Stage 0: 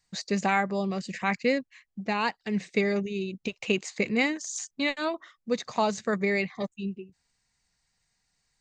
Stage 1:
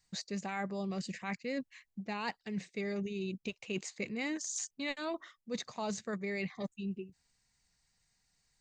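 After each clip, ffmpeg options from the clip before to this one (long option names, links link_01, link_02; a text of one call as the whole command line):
ffmpeg -i in.wav -af "equalizer=frequency=1100:width=0.31:gain=-3,areverse,acompressor=threshold=-34dB:ratio=10,areverse" out.wav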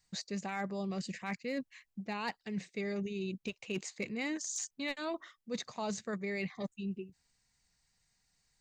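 ffmpeg -i in.wav -af "volume=27.5dB,asoftclip=hard,volume=-27.5dB" out.wav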